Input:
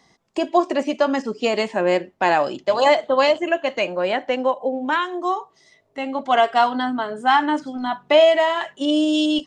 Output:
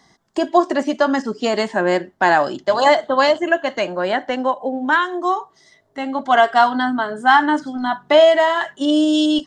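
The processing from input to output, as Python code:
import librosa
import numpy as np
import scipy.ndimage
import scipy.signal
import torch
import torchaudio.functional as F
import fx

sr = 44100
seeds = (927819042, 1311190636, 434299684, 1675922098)

y = fx.graphic_eq_31(x, sr, hz=(500, 1600, 2500), db=(-6, 5, -10))
y = y * 10.0 ** (3.5 / 20.0)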